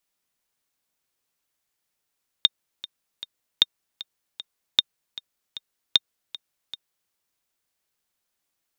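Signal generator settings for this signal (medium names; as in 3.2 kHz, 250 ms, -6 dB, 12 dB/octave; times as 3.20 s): metronome 154 bpm, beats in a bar 3, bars 4, 3.66 kHz, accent 18.5 dB -2 dBFS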